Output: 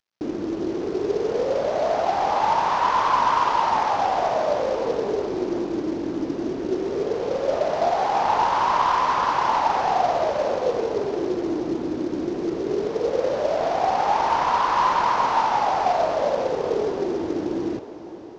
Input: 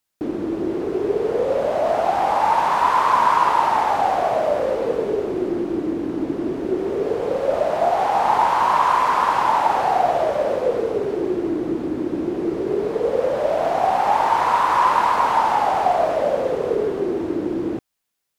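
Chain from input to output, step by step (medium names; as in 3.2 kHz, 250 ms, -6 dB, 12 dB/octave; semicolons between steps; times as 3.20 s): CVSD coder 32 kbps; echo that smears into a reverb 596 ms, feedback 47%, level -14 dB; trim -2.5 dB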